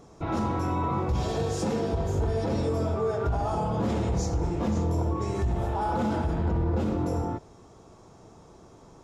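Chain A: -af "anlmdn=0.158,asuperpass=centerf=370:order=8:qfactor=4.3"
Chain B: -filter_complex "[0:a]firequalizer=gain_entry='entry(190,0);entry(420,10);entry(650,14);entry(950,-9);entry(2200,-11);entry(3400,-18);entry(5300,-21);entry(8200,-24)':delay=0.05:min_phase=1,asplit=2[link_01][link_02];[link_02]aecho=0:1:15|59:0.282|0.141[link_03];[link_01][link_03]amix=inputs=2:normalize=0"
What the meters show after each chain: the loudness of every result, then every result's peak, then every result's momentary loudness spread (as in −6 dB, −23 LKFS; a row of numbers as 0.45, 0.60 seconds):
−39.5, −21.5 LKFS; −26.5, −8.5 dBFS; 4, 5 LU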